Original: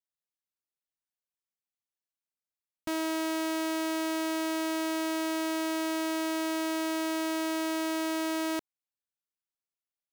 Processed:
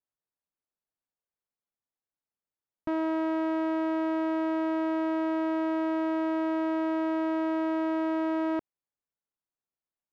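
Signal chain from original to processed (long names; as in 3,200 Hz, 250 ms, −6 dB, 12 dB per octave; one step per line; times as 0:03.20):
low-pass filter 1,300 Hz 12 dB per octave
level +3.5 dB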